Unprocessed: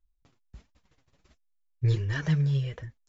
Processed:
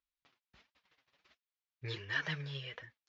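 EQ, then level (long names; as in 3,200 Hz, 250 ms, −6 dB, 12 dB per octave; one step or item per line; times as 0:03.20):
resonant band-pass 4,800 Hz, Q 0.59
high-frequency loss of the air 250 metres
+8.0 dB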